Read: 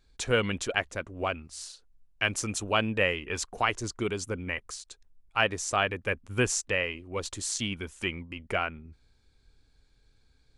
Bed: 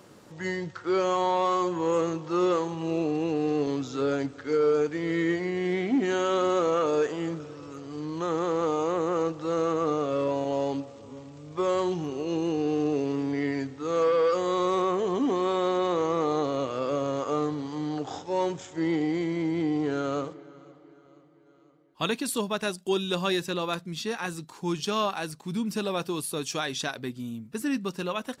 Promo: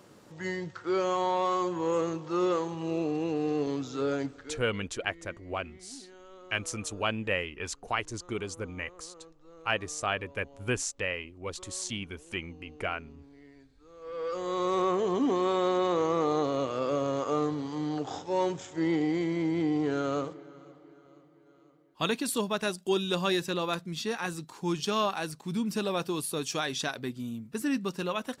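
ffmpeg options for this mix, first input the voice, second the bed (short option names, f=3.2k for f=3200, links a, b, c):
-filter_complex "[0:a]adelay=4300,volume=-4dB[a];[1:a]volume=22dB,afade=t=out:st=4.27:d=0.33:silence=0.0707946,afade=t=in:st=14.01:d=0.86:silence=0.0562341[b];[a][b]amix=inputs=2:normalize=0"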